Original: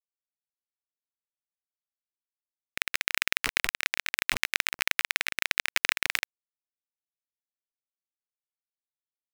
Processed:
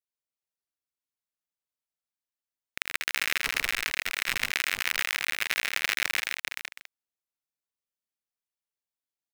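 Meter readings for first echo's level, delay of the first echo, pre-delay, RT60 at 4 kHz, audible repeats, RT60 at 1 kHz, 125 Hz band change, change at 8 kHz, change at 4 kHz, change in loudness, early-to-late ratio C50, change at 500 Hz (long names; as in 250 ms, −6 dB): −6.0 dB, 81 ms, no reverb audible, no reverb audible, 4, no reverb audible, 0.0 dB, 0.0 dB, 0.0 dB, −0.5 dB, no reverb audible, 0.0 dB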